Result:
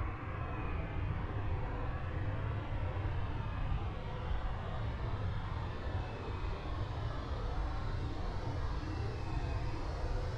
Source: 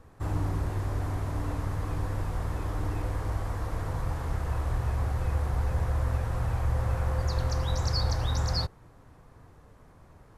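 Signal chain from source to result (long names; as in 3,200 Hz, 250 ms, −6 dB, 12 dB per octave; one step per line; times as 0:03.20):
low-pass filter sweep 2,000 Hz → 7,500 Hz, 0:01.49–0:03.82
mains-hum notches 60/120/180/240/300 Hz
extreme stretch with random phases 8.3×, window 0.05 s, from 0:01.84
level −6.5 dB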